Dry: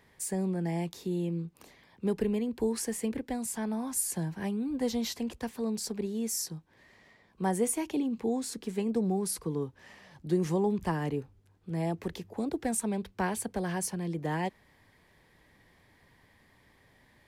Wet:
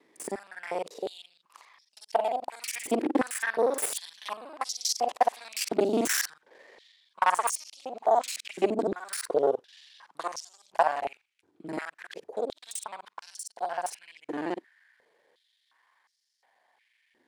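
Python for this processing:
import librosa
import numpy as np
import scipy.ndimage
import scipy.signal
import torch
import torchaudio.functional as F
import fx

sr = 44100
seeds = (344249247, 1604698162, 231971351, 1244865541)

y = fx.local_reverse(x, sr, ms=41.0)
y = fx.doppler_pass(y, sr, speed_mps=14, closest_m=14.0, pass_at_s=6.14)
y = scipy.signal.sosfilt(scipy.signal.butter(2, 10000.0, 'lowpass', fs=sr, output='sos'), y)
y = fx.rider(y, sr, range_db=4, speed_s=0.5)
y = fx.cheby_harmonics(y, sr, harmonics=(4,), levels_db=(-7,), full_scale_db=-24.0)
y = fx.filter_held_highpass(y, sr, hz=2.8, low_hz=320.0, high_hz=5400.0)
y = F.gain(torch.from_numpy(y), 9.0).numpy()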